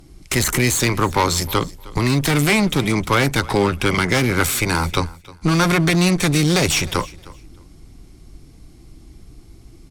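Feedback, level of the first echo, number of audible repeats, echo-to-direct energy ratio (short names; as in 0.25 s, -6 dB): 20%, -21.0 dB, 2, -21.0 dB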